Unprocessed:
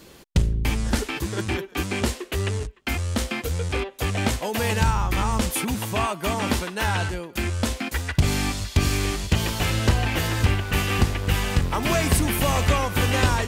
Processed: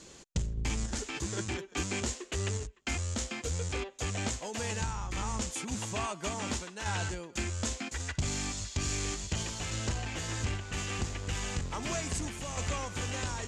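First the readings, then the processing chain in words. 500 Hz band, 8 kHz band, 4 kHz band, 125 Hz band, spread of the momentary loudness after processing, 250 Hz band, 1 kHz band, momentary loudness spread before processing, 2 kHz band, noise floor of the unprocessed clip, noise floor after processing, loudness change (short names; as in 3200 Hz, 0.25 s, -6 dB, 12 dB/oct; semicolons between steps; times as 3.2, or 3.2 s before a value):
-11.5 dB, -4.0 dB, -9.5 dB, -12.0 dB, 3 LU, -12.0 dB, -12.5 dB, 6 LU, -11.5 dB, -47 dBFS, -52 dBFS, -10.5 dB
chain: in parallel at -8.5 dB: wavefolder -20.5 dBFS; on the sum: random-step tremolo; vocal rider 0.5 s; ladder low-pass 7700 Hz, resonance 65%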